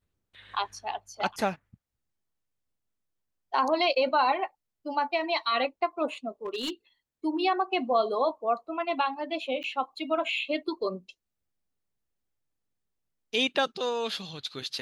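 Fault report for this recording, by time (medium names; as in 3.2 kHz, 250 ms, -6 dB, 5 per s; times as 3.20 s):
6.45–6.70 s: clipped -27.5 dBFS
9.63–9.64 s: dropout 8.6 ms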